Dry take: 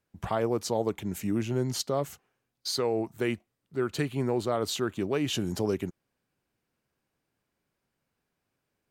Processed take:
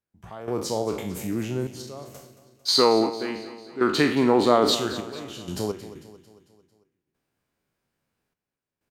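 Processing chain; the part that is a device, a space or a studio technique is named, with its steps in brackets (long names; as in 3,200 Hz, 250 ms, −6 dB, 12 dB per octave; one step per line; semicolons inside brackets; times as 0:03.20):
peak hold with a decay on every bin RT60 0.52 s
0:02.68–0:04.75: graphic EQ with 10 bands 125 Hz −4 dB, 250 Hz +10 dB, 500 Hz +4 dB, 1,000 Hz +11 dB, 2,000 Hz +5 dB, 4,000 Hz +9 dB
trance gate with a delay (gate pattern "..xxxxx..x.xx." 63 BPM −12 dB; repeating echo 224 ms, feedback 52%, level −14.5 dB)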